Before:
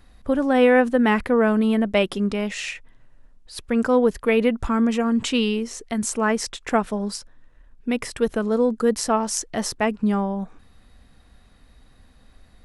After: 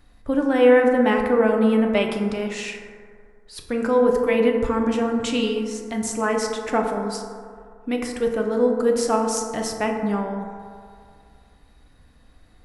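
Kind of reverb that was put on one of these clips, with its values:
feedback delay network reverb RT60 2.2 s, low-frequency decay 0.8×, high-frequency decay 0.3×, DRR 1.5 dB
level −3 dB

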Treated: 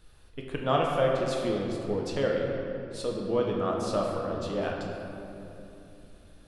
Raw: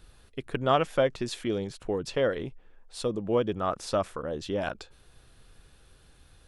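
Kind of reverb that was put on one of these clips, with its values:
rectangular room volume 130 cubic metres, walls hard, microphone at 0.5 metres
level −4 dB

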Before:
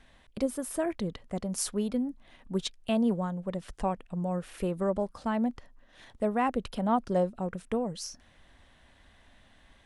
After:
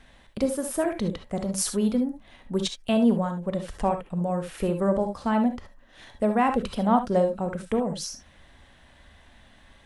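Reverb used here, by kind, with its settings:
reverb whose tail is shaped and stops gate 90 ms rising, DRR 6.5 dB
level +4.5 dB

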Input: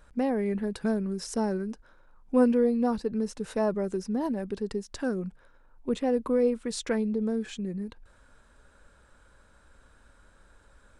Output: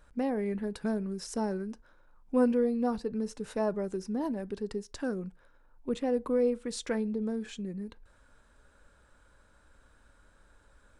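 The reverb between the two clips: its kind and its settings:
feedback delay network reverb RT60 0.32 s, low-frequency decay 0.75×, high-frequency decay 0.55×, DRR 17 dB
level −3.5 dB

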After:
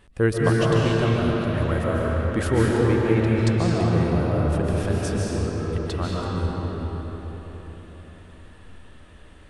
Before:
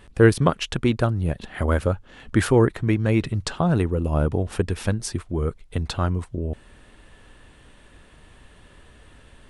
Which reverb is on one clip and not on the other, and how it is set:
comb and all-pass reverb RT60 4.7 s, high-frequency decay 0.65×, pre-delay 105 ms, DRR −5.5 dB
level −6 dB

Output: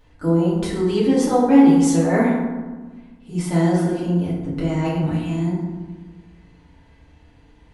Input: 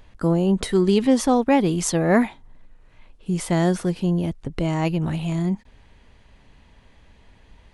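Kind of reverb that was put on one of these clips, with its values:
feedback delay network reverb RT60 1.3 s, low-frequency decay 1.45×, high-frequency decay 0.45×, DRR −8.5 dB
level −9 dB

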